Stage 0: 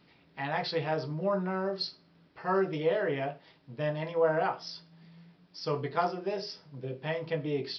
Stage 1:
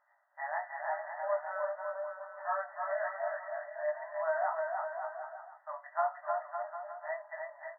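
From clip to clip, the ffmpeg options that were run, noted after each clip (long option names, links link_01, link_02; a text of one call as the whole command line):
ffmpeg -i in.wav -af "flanger=delay=16:depth=4.7:speed=0.93,aecho=1:1:310|558|756.4|915.1|1042:0.631|0.398|0.251|0.158|0.1,afftfilt=real='re*between(b*sr/4096,570,2000)':imag='im*between(b*sr/4096,570,2000)':win_size=4096:overlap=0.75" out.wav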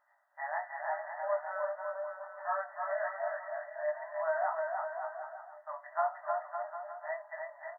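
ffmpeg -i in.wav -filter_complex "[0:a]asplit=2[link_01][link_02];[link_02]adelay=1691,volume=-20dB,highshelf=frequency=4000:gain=-38[link_03];[link_01][link_03]amix=inputs=2:normalize=0" out.wav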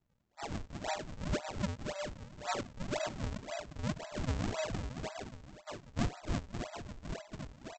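ffmpeg -i in.wav -af "lowpass=frequency=1000:poles=1,aresample=16000,acrusher=samples=26:mix=1:aa=0.000001:lfo=1:lforange=41.6:lforate=1.9,aresample=44100" out.wav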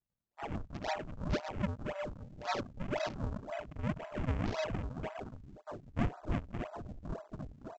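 ffmpeg -i in.wav -af "afwtdn=0.00398,volume=1dB" out.wav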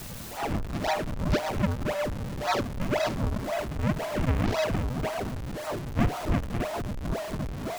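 ffmpeg -i in.wav -af "aeval=exprs='val(0)+0.5*0.0141*sgn(val(0))':channel_layout=same,volume=6.5dB" out.wav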